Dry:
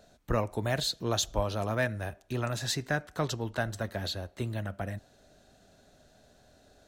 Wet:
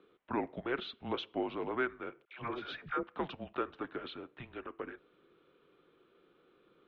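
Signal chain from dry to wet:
0:02.25–0:03.03: all-pass dispersion lows, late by 120 ms, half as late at 620 Hz
single-sideband voice off tune −250 Hz 480–3,300 Hz
level −2.5 dB

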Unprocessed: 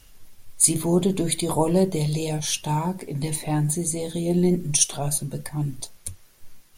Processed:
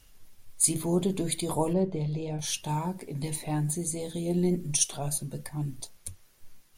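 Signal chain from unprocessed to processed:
0:01.73–0:02.39: head-to-tape spacing loss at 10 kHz 27 dB
level −6 dB

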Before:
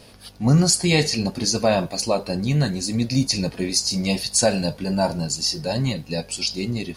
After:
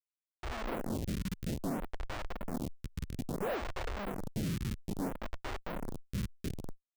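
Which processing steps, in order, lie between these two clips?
low-pass that shuts in the quiet parts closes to 850 Hz, open at −15 dBFS
reverb reduction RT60 0.82 s
downward compressor 1.5 to 1, threshold −32 dBFS, peak gain reduction 7 dB
sound drawn into the spectrogram rise, 0:03.42–0:03.67, 760–1,800 Hz −24 dBFS
decimation without filtering 22×
phaser with its sweep stopped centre 690 Hz, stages 4
single-sideband voice off tune −390 Hz 180–2,900 Hz
four-comb reverb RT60 0.36 s, combs from 32 ms, DRR 5.5 dB
comparator with hysteresis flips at −32.5 dBFS
phaser with staggered stages 0.6 Hz
level +1 dB

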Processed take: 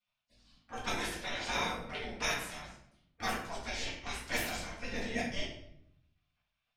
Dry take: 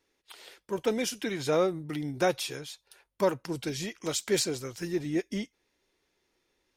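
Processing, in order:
low-pass that shuts in the quiet parts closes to 1,700 Hz, open at −22.5 dBFS
gate on every frequency bin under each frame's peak −20 dB weak
low-shelf EQ 370 Hz +7.5 dB
rectangular room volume 160 cubic metres, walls mixed, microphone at 1.8 metres

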